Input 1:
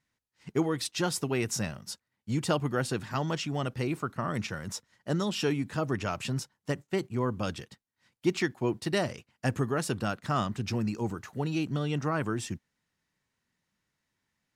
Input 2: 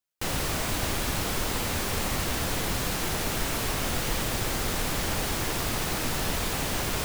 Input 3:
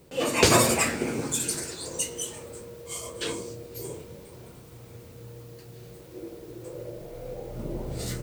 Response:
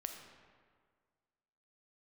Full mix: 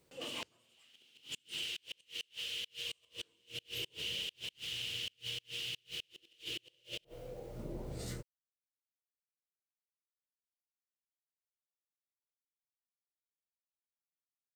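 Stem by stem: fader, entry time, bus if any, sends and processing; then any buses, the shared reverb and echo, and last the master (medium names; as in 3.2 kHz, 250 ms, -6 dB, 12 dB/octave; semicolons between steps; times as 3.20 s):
mute
-6.0 dB, 0.00 s, send -14.5 dB, treble shelf 7.5 kHz -9 dB; level rider gain up to 5.5 dB; ladder high-pass 2.8 kHz, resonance 80%
2.50 s -20.5 dB -> 3.07 s -10.5 dB, 0.00 s, send -15.5 dB, none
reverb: on, RT60 1.8 s, pre-delay 4 ms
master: treble shelf 11 kHz -5.5 dB; inverted gate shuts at -29 dBFS, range -35 dB; tape noise reduction on one side only encoder only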